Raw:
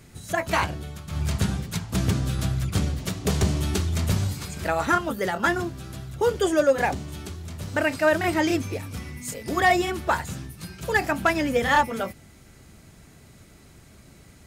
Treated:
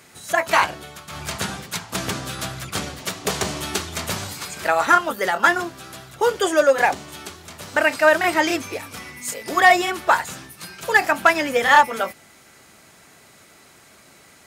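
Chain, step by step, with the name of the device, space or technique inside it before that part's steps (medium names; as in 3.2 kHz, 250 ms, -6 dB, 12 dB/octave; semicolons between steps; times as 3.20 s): filter by subtraction (in parallel: low-pass 990 Hz 12 dB/octave + polarity flip); on the sum: trim +5.5 dB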